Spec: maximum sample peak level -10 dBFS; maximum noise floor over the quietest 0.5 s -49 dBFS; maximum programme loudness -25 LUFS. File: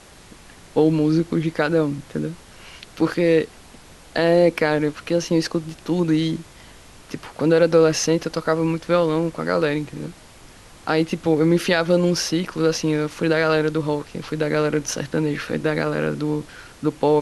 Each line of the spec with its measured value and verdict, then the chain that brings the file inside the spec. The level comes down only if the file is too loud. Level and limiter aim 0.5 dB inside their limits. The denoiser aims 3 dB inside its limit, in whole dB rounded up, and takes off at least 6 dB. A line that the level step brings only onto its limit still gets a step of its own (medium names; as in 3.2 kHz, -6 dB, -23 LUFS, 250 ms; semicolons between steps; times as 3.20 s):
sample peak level -5.0 dBFS: fail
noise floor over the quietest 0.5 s -45 dBFS: fail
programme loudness -21.0 LUFS: fail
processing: trim -4.5 dB; peak limiter -10.5 dBFS